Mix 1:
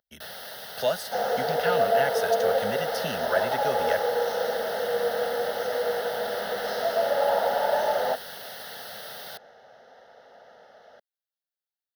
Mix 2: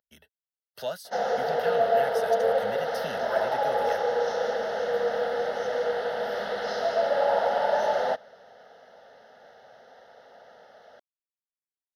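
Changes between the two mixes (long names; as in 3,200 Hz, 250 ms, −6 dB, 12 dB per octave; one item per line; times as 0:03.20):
speech −7.0 dB
first sound: muted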